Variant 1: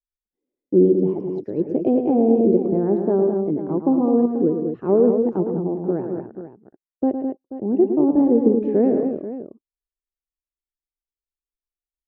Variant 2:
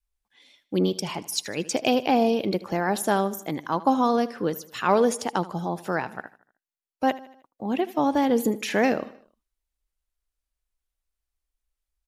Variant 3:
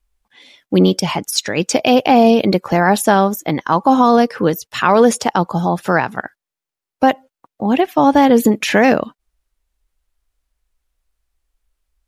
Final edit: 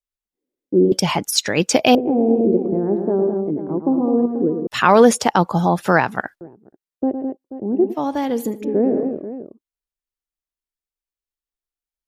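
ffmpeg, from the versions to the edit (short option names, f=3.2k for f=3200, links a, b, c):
-filter_complex "[2:a]asplit=2[a][b];[0:a]asplit=4[c][d][e][f];[c]atrim=end=0.922[g];[a]atrim=start=0.918:end=1.952[h];[d]atrim=start=1.948:end=4.672[i];[b]atrim=start=4.668:end=6.412[j];[e]atrim=start=6.408:end=7.95[k];[1:a]atrim=start=7.89:end=8.65[l];[f]atrim=start=8.59[m];[g][h]acrossfade=d=0.004:c1=hsin:c2=hsin[n];[n][i]acrossfade=d=0.004:c1=hsin:c2=hsin[o];[o][j]acrossfade=d=0.004:c1=hsin:c2=hsin[p];[p][k]acrossfade=d=0.004:c1=hsin:c2=hsin[q];[q][l]acrossfade=d=0.06:c1=tri:c2=tri[r];[r][m]acrossfade=d=0.06:c1=tri:c2=tri"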